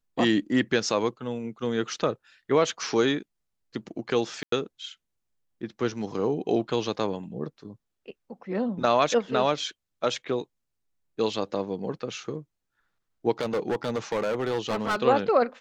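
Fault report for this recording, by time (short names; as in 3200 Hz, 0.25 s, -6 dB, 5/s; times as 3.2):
4.43–4.52 gap 93 ms
13.41–14.96 clipped -22.5 dBFS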